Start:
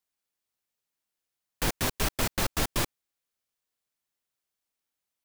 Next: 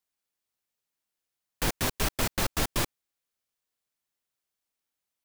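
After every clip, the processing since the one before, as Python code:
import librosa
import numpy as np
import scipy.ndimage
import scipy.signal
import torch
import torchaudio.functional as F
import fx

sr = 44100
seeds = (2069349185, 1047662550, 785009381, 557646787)

y = x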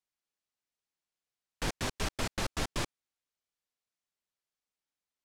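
y = scipy.signal.sosfilt(scipy.signal.butter(2, 8000.0, 'lowpass', fs=sr, output='sos'), x)
y = y * 10.0 ** (-5.0 / 20.0)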